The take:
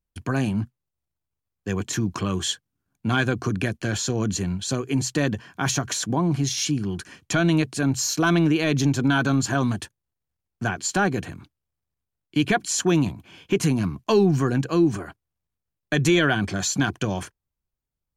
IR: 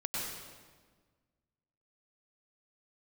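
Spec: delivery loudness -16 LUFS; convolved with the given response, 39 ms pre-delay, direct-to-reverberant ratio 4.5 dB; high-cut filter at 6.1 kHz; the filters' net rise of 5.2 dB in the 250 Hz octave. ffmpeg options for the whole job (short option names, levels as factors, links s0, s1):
-filter_complex "[0:a]lowpass=6100,equalizer=f=250:t=o:g=7,asplit=2[s0][s1];[1:a]atrim=start_sample=2205,adelay=39[s2];[s1][s2]afir=irnorm=-1:irlink=0,volume=0.376[s3];[s0][s3]amix=inputs=2:normalize=0,volume=1.41"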